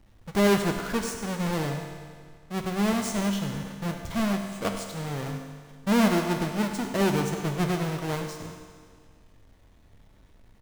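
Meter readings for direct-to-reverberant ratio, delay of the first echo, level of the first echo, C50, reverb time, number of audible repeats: 3.5 dB, 0.1 s, -13.0 dB, 5.0 dB, 1.9 s, 1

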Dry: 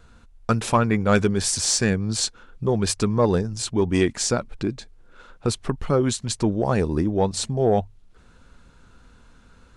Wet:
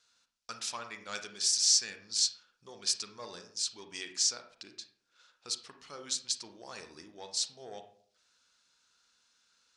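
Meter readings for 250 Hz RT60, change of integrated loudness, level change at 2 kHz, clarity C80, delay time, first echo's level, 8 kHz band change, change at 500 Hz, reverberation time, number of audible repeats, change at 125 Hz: 0.65 s, -8.5 dB, -14.5 dB, 13.5 dB, none, none, -4.0 dB, -27.0 dB, 0.60 s, none, -38.5 dB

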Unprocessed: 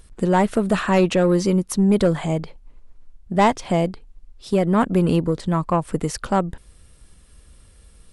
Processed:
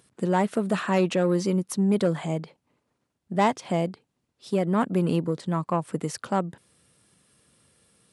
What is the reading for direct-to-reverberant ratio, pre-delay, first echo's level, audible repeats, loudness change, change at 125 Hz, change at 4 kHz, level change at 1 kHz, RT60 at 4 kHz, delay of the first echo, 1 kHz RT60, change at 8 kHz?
none, none, none, none, -5.5 dB, -5.5 dB, -5.5 dB, -5.5 dB, none, none, none, -5.5 dB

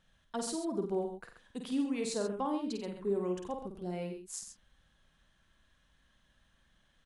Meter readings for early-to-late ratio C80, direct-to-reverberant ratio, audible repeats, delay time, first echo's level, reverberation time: none, none, 3, 50 ms, -5.5 dB, none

